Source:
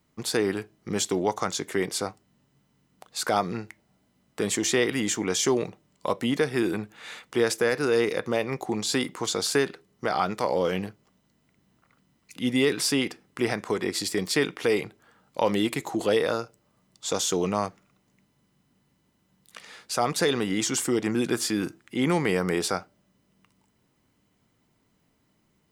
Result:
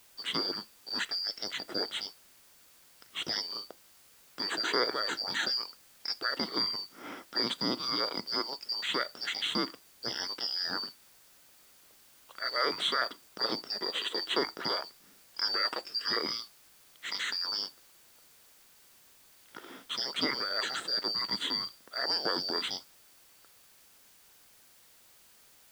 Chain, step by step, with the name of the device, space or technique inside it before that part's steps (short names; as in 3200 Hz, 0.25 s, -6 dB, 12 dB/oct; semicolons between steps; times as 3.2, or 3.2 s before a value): ripple EQ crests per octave 1.3, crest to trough 9 dB; split-band scrambled radio (four-band scrambler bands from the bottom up 2341; BPF 300–2800 Hz; white noise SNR 24 dB)